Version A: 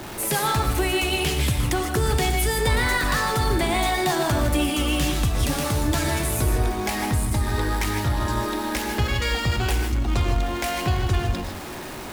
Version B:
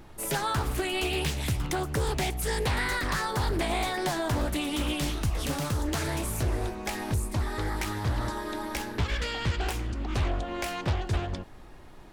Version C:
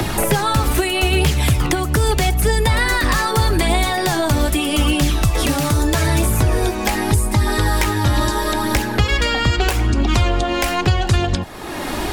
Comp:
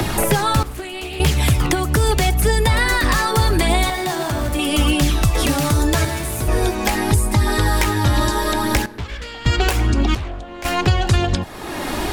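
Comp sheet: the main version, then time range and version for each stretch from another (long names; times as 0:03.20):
C
0:00.63–0:01.20: punch in from B
0:03.90–0:04.59: punch in from A
0:06.05–0:06.48: punch in from A
0:08.86–0:09.46: punch in from B
0:10.15–0:10.65: punch in from B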